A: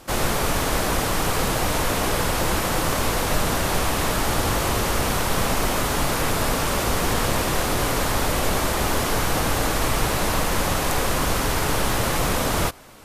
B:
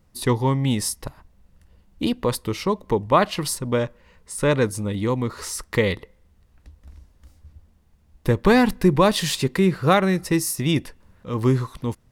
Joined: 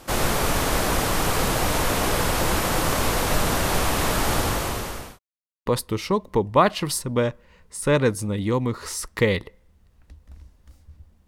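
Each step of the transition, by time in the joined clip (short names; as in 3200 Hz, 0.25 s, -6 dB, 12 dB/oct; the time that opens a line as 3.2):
A
4.35–5.19 fade out linear
5.19–5.66 mute
5.66 switch to B from 2.22 s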